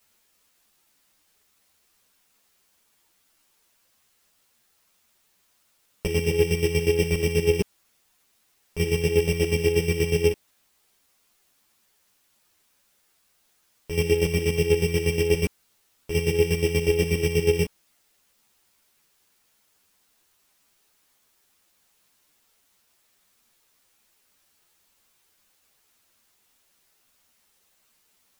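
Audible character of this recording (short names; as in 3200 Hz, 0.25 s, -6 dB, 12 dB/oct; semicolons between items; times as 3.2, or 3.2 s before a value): a buzz of ramps at a fixed pitch in blocks of 16 samples; chopped level 8.3 Hz, depth 65%, duty 30%; a quantiser's noise floor 12-bit, dither triangular; a shimmering, thickened sound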